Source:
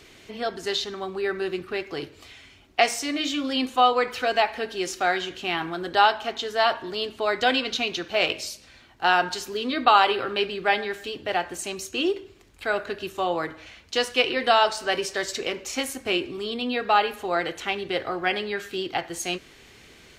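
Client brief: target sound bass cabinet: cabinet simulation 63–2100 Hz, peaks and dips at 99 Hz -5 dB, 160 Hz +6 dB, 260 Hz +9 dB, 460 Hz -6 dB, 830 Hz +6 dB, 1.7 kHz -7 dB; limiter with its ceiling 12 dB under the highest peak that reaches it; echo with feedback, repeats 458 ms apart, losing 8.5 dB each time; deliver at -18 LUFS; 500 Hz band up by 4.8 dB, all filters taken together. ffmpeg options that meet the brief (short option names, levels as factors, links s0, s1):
-af "equalizer=f=500:t=o:g=8,alimiter=limit=0.224:level=0:latency=1,highpass=f=63:w=0.5412,highpass=f=63:w=1.3066,equalizer=f=99:t=q:w=4:g=-5,equalizer=f=160:t=q:w=4:g=6,equalizer=f=260:t=q:w=4:g=9,equalizer=f=460:t=q:w=4:g=-6,equalizer=f=830:t=q:w=4:g=6,equalizer=f=1700:t=q:w=4:g=-7,lowpass=f=2100:w=0.5412,lowpass=f=2100:w=1.3066,aecho=1:1:458|916|1374|1832:0.376|0.143|0.0543|0.0206,volume=2"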